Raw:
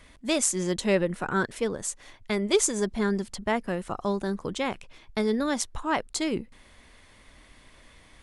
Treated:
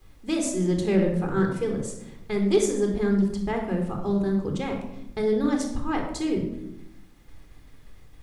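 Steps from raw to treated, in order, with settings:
low-shelf EQ 470 Hz +10 dB
downward expander −40 dBFS
background noise pink −58 dBFS
rectangular room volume 2,500 cubic metres, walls furnished, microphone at 3.9 metres
highs frequency-modulated by the lows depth 0.12 ms
level −8.5 dB

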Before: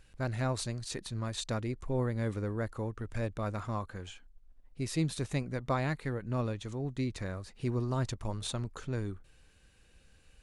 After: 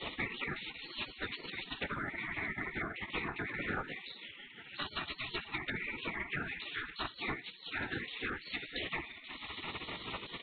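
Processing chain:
convolution reverb RT60 0.35 s, pre-delay 6 ms, DRR 4 dB
0:00.70–0:01.72: compressor whose output falls as the input rises −43 dBFS, ratio −1
Butterworth high-pass 460 Hz 72 dB per octave
comb filter 1.9 ms, depth 94%
feedback echo with a low-pass in the loop 160 ms, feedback 67%, low-pass 1,400 Hz, level −16.5 dB
brickwall limiter −27 dBFS, peak gain reduction 11.5 dB
treble cut that deepens with the level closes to 1,300 Hz, closed at −32 dBFS
linear-prediction vocoder at 8 kHz whisper
flat-topped bell 1,200 Hz +12.5 dB
notch filter 1,900 Hz, Q 13
gate on every frequency bin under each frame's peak −25 dB weak
multiband upward and downward compressor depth 100%
level +16 dB

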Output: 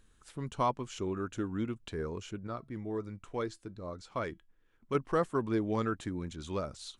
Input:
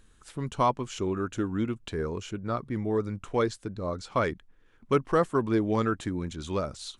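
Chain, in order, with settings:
0:02.47–0:04.95: tuned comb filter 330 Hz, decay 0.17 s, harmonics all, mix 40%
level −5.5 dB

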